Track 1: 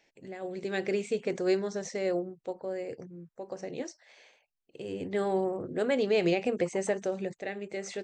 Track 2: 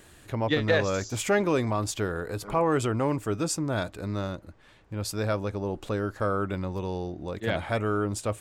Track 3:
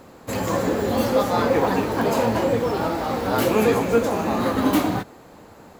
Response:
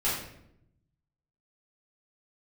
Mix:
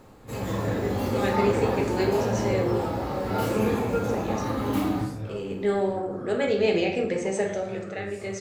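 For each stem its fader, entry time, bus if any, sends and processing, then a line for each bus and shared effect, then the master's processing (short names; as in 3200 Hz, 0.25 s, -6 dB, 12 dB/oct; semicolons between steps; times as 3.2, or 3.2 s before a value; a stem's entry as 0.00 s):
-1.0 dB, 0.50 s, send -7.5 dB, low shelf 270 Hz -7 dB
-15.5 dB, 0.00 s, no send, phase scrambler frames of 0.2 s
-9.0 dB, 0.00 s, send -9.5 dB, auto duck -9 dB, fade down 0.30 s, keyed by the second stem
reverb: on, RT60 0.75 s, pre-delay 5 ms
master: low shelf 170 Hz +7 dB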